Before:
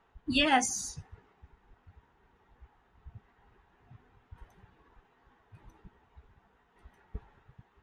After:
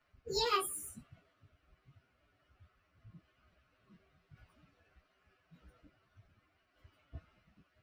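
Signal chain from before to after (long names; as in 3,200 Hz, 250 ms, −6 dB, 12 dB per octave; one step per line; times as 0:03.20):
phase-vocoder pitch shift without resampling +7.5 semitones
level −3.5 dB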